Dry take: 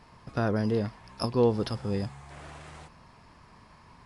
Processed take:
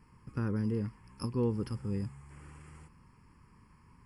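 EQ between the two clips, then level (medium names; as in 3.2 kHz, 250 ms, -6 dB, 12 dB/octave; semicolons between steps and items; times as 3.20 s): peaking EQ 1.6 kHz -8.5 dB 1.1 oct; static phaser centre 1.6 kHz, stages 4; band-stop 6.2 kHz, Q 5.5; -2.5 dB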